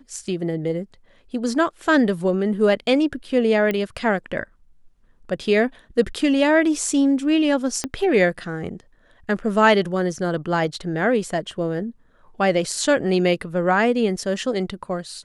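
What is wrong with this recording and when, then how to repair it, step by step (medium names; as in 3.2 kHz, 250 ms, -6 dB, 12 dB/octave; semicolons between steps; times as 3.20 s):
3.71 s: pop -12 dBFS
7.84 s: pop -10 dBFS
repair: de-click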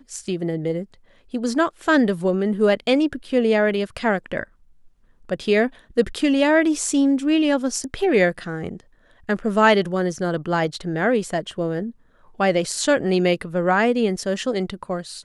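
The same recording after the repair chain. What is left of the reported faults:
7.84 s: pop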